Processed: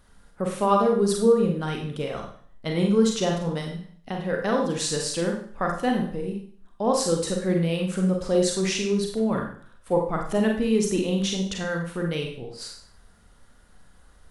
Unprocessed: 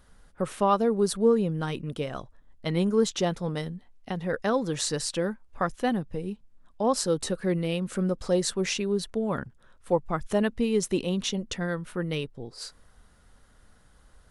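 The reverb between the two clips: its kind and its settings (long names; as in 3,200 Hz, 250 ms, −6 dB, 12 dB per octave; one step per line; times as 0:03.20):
four-comb reverb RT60 0.52 s, combs from 32 ms, DRR 1 dB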